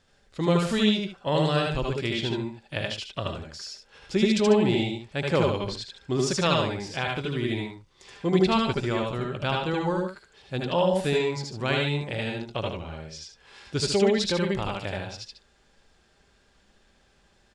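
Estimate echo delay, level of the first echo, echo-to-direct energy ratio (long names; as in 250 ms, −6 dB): 76 ms, −3.0 dB, 0.0 dB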